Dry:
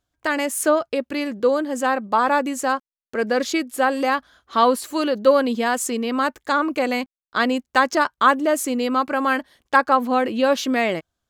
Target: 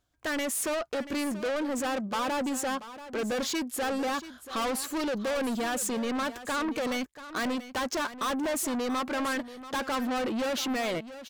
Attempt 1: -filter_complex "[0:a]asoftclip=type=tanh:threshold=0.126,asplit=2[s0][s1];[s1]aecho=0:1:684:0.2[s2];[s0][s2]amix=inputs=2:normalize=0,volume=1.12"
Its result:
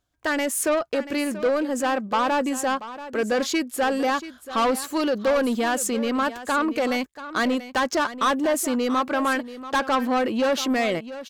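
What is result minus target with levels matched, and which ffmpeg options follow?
saturation: distortion -6 dB
-filter_complex "[0:a]asoftclip=type=tanh:threshold=0.0355,asplit=2[s0][s1];[s1]aecho=0:1:684:0.2[s2];[s0][s2]amix=inputs=2:normalize=0,volume=1.12"

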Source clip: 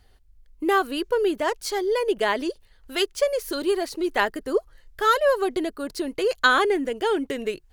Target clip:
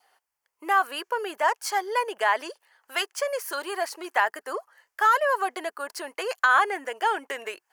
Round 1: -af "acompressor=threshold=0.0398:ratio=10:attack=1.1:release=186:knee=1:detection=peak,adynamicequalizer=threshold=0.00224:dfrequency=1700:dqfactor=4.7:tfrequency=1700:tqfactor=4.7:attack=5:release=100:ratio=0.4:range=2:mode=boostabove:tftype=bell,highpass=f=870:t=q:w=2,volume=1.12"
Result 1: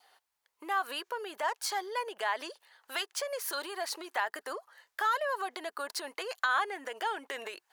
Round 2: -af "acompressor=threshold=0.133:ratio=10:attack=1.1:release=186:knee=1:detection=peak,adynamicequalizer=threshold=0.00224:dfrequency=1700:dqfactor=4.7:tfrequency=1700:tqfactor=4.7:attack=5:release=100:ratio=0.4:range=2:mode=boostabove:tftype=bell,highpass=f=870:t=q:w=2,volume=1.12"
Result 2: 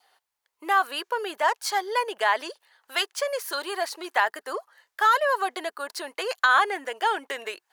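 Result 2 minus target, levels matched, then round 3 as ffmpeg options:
4 kHz band +3.5 dB
-af "acompressor=threshold=0.133:ratio=10:attack=1.1:release=186:knee=1:detection=peak,adynamicequalizer=threshold=0.00224:dfrequency=1700:dqfactor=4.7:tfrequency=1700:tqfactor=4.7:attack=5:release=100:ratio=0.4:range=2:mode=boostabove:tftype=bell,highpass=f=870:t=q:w=2,equalizer=f=3800:w=3.7:g=-10.5,volume=1.12"

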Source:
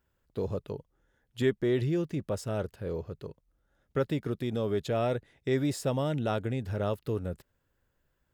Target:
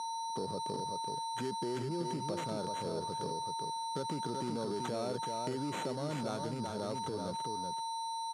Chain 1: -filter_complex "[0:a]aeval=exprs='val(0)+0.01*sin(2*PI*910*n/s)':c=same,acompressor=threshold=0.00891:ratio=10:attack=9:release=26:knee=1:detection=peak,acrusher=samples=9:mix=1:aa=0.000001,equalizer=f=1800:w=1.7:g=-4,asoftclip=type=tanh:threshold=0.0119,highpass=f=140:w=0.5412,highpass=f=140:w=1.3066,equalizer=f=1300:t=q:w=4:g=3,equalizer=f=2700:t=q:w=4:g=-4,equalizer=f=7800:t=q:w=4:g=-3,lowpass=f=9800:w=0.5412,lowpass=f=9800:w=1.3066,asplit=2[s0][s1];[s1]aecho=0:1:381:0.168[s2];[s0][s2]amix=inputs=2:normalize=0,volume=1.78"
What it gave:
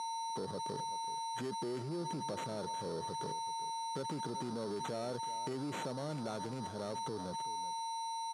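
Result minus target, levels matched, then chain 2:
saturation: distortion +11 dB; echo-to-direct -10.5 dB
-filter_complex "[0:a]aeval=exprs='val(0)+0.01*sin(2*PI*910*n/s)':c=same,acompressor=threshold=0.00891:ratio=10:attack=9:release=26:knee=1:detection=peak,acrusher=samples=9:mix=1:aa=0.000001,equalizer=f=1800:w=1.7:g=-4,asoftclip=type=tanh:threshold=0.0282,highpass=f=140:w=0.5412,highpass=f=140:w=1.3066,equalizer=f=1300:t=q:w=4:g=3,equalizer=f=2700:t=q:w=4:g=-4,equalizer=f=7800:t=q:w=4:g=-3,lowpass=f=9800:w=0.5412,lowpass=f=9800:w=1.3066,asplit=2[s0][s1];[s1]aecho=0:1:381:0.562[s2];[s0][s2]amix=inputs=2:normalize=0,volume=1.78"

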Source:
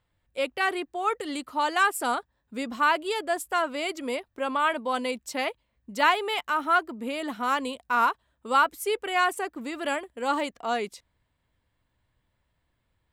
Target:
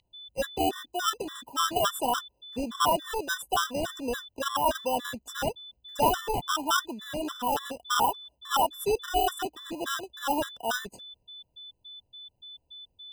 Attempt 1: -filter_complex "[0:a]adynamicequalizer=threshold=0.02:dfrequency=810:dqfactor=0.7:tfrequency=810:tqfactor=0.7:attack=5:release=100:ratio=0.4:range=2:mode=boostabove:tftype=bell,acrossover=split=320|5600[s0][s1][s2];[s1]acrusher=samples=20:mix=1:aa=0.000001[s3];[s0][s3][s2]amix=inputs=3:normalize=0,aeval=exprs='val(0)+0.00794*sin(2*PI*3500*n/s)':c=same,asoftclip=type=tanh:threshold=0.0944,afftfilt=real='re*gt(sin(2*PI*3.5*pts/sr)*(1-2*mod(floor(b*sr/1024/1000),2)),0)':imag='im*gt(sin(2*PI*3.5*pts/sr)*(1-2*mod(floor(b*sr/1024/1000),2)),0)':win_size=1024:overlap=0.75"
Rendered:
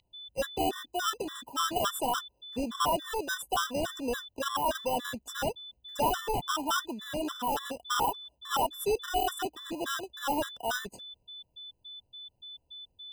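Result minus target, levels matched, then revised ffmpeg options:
saturation: distortion +9 dB
-filter_complex "[0:a]adynamicequalizer=threshold=0.02:dfrequency=810:dqfactor=0.7:tfrequency=810:tqfactor=0.7:attack=5:release=100:ratio=0.4:range=2:mode=boostabove:tftype=bell,acrossover=split=320|5600[s0][s1][s2];[s1]acrusher=samples=20:mix=1:aa=0.000001[s3];[s0][s3][s2]amix=inputs=3:normalize=0,aeval=exprs='val(0)+0.00794*sin(2*PI*3500*n/s)':c=same,asoftclip=type=tanh:threshold=0.237,afftfilt=real='re*gt(sin(2*PI*3.5*pts/sr)*(1-2*mod(floor(b*sr/1024/1000),2)),0)':imag='im*gt(sin(2*PI*3.5*pts/sr)*(1-2*mod(floor(b*sr/1024/1000),2)),0)':win_size=1024:overlap=0.75"

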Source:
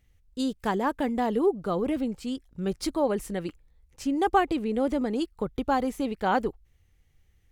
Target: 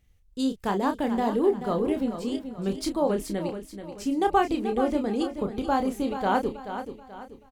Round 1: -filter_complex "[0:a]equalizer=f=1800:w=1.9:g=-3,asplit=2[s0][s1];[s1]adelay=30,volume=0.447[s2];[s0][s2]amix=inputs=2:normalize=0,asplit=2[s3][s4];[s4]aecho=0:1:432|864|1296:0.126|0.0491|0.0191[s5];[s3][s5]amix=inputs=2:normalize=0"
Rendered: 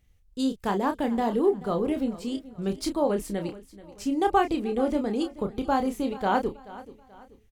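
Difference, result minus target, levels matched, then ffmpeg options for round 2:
echo-to-direct -8 dB
-filter_complex "[0:a]equalizer=f=1800:w=1.9:g=-3,asplit=2[s0][s1];[s1]adelay=30,volume=0.447[s2];[s0][s2]amix=inputs=2:normalize=0,asplit=2[s3][s4];[s4]aecho=0:1:432|864|1296|1728:0.316|0.123|0.0481|0.0188[s5];[s3][s5]amix=inputs=2:normalize=0"

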